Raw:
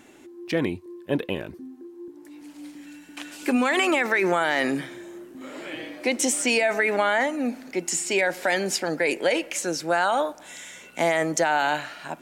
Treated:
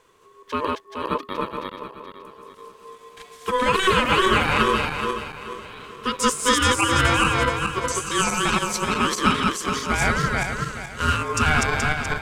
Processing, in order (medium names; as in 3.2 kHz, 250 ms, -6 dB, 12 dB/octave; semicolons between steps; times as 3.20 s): backward echo that repeats 213 ms, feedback 68%, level -1 dB; ring modulator 750 Hz; upward expansion 1.5:1, over -35 dBFS; trim +4 dB